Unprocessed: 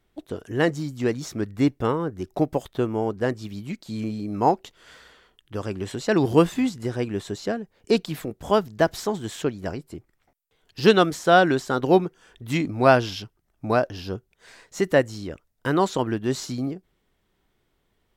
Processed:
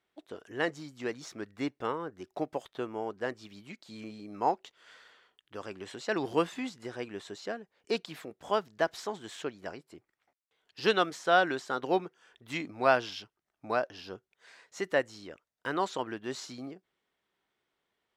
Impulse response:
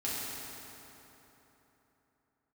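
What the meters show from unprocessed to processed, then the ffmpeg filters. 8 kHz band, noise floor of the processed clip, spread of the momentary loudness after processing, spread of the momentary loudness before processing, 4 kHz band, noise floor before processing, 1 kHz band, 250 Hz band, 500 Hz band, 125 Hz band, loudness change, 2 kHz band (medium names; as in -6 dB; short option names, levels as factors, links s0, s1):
-10.0 dB, -85 dBFS, 18 LU, 16 LU, -6.5 dB, -71 dBFS, -7.0 dB, -13.5 dB, -10.0 dB, -19.0 dB, -9.0 dB, -5.5 dB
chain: -af "bandpass=f=1900:t=q:w=0.92:csg=0,equalizer=f=1900:w=0.52:g=-8.5,volume=1.41"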